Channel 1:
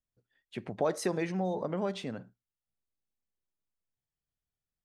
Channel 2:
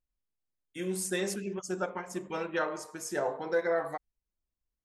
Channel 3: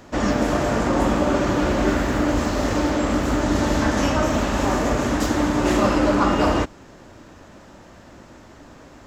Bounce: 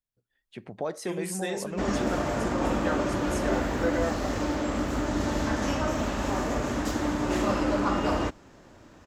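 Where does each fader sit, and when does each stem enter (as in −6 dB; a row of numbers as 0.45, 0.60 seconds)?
−2.5, −1.0, −7.5 decibels; 0.00, 0.30, 1.65 seconds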